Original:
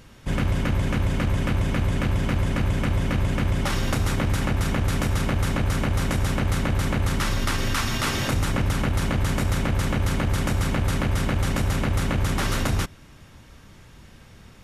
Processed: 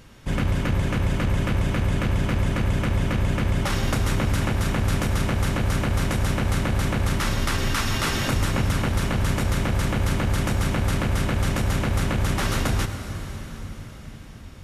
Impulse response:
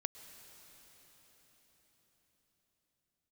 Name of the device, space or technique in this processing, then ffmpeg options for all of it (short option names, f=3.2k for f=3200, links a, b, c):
cathedral: -filter_complex "[1:a]atrim=start_sample=2205[a];[0:a][a]afir=irnorm=-1:irlink=0,volume=2dB"